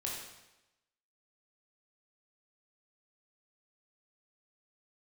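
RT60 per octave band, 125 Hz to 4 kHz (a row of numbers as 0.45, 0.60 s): 0.90, 0.95, 0.95, 0.95, 0.95, 0.90 s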